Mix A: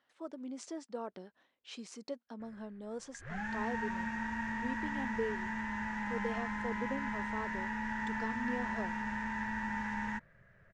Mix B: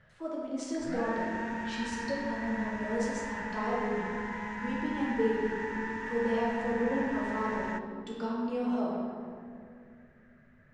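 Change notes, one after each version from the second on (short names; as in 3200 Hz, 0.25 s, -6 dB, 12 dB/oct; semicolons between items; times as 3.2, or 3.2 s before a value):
background: entry -2.40 s; reverb: on, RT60 2.3 s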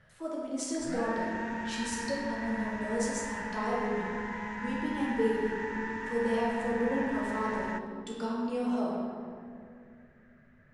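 speech: remove air absorption 98 m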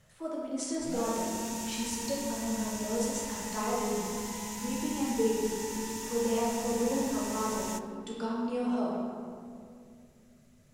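background: remove synth low-pass 1700 Hz, resonance Q 5.8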